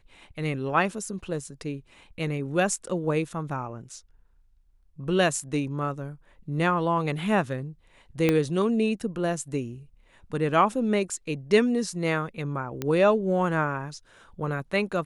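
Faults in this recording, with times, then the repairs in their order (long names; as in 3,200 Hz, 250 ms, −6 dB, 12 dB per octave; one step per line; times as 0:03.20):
0:08.29: click −9 dBFS
0:12.82: click −15 dBFS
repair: click removal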